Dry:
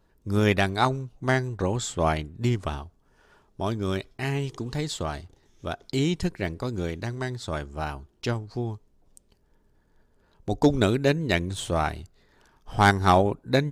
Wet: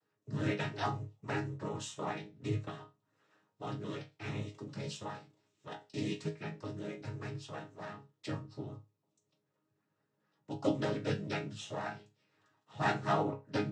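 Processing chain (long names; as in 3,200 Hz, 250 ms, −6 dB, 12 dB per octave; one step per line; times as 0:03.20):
cochlear-implant simulation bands 12
resonators tuned to a chord G#2 sus4, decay 0.25 s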